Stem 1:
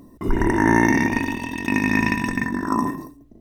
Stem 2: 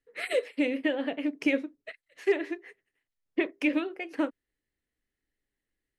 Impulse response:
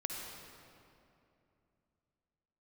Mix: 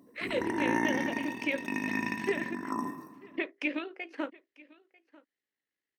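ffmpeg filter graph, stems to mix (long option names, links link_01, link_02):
-filter_complex "[0:a]volume=-13.5dB,asplit=2[link_01][link_02];[link_02]volume=-12dB[link_03];[1:a]lowpass=5300,tiltshelf=frequency=720:gain=-3.5,tremolo=f=55:d=0.4,volume=-3dB,asplit=2[link_04][link_05];[link_05]volume=-23dB[link_06];[2:a]atrim=start_sample=2205[link_07];[link_03][link_07]afir=irnorm=-1:irlink=0[link_08];[link_06]aecho=0:1:944:1[link_09];[link_01][link_04][link_08][link_09]amix=inputs=4:normalize=0,highpass=190"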